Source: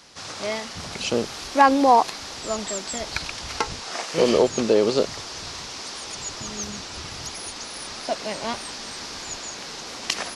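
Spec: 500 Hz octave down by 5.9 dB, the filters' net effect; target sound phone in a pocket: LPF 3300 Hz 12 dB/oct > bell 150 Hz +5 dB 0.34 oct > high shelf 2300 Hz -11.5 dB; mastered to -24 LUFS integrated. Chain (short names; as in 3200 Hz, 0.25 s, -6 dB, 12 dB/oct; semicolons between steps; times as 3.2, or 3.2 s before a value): LPF 3300 Hz 12 dB/oct; bell 150 Hz +5 dB 0.34 oct; bell 500 Hz -6.5 dB; high shelf 2300 Hz -11.5 dB; gain +4 dB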